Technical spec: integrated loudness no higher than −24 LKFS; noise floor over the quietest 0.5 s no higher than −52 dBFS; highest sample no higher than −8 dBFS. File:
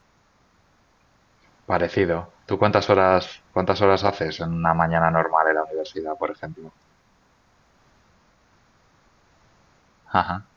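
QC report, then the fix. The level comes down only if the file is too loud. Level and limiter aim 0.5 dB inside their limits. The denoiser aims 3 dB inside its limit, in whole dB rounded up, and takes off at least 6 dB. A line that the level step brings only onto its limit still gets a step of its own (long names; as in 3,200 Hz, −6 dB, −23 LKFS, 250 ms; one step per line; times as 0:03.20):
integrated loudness −22.0 LKFS: out of spec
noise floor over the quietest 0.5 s −61 dBFS: in spec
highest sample −3.0 dBFS: out of spec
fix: level −2.5 dB
brickwall limiter −8.5 dBFS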